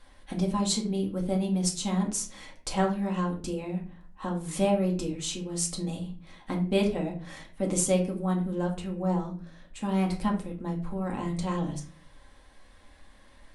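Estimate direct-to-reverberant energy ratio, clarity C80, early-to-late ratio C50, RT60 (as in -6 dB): -0.5 dB, 14.5 dB, 10.0 dB, 0.40 s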